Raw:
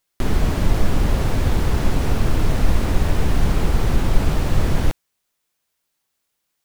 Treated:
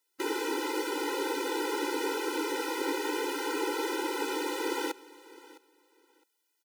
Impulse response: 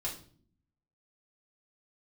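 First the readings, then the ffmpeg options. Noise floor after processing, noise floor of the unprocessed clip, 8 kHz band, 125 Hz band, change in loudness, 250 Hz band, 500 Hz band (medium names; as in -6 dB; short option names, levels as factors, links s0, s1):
-78 dBFS, -75 dBFS, -3.5 dB, under -40 dB, -10.0 dB, -8.5 dB, -3.0 dB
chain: -filter_complex "[0:a]acrossover=split=540|1800[s0][s1][s2];[s0]alimiter=limit=0.224:level=0:latency=1[s3];[s3][s1][s2]amix=inputs=3:normalize=0,aecho=1:1:660|1320:0.1|0.02,afftfilt=real='re*eq(mod(floor(b*sr/1024/260),2),1)':imag='im*eq(mod(floor(b*sr/1024/260),2),1)':win_size=1024:overlap=0.75"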